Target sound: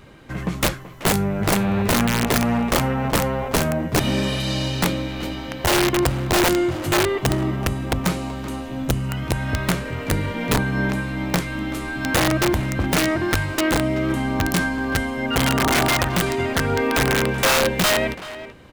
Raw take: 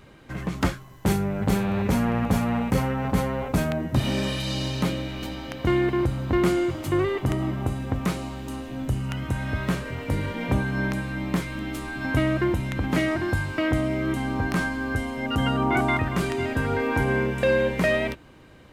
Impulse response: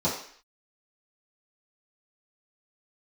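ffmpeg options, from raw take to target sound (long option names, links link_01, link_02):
-filter_complex "[0:a]aeval=exprs='(mod(5.96*val(0)+1,2)-1)/5.96':channel_layout=same,asplit=2[link_01][link_02];[link_02]adelay=380,highpass=300,lowpass=3400,asoftclip=type=hard:threshold=-25.5dB,volume=-10dB[link_03];[link_01][link_03]amix=inputs=2:normalize=0,volume=4dB"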